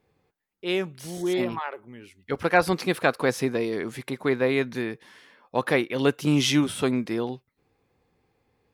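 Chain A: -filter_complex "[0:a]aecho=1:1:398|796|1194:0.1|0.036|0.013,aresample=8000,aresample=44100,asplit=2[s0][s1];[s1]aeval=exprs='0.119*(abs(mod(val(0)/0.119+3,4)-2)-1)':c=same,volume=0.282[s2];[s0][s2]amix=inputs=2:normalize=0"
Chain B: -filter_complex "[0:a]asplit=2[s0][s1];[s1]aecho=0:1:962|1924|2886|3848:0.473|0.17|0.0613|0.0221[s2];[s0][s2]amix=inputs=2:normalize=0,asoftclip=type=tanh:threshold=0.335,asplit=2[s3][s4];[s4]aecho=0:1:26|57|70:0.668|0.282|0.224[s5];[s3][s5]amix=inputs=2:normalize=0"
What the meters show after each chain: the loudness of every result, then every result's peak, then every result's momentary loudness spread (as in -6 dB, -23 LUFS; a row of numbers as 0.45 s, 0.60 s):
-24.5 LUFS, -24.5 LUFS; -7.0 dBFS, -8.0 dBFS; 12 LU, 10 LU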